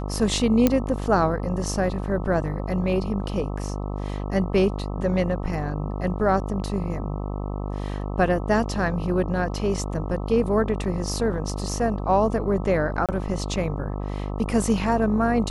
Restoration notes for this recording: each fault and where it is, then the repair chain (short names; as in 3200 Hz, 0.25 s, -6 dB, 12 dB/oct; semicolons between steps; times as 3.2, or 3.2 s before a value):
buzz 50 Hz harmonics 26 -29 dBFS
0.67 pop -5 dBFS
13.06–13.09 gap 27 ms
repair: de-click; de-hum 50 Hz, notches 26; interpolate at 13.06, 27 ms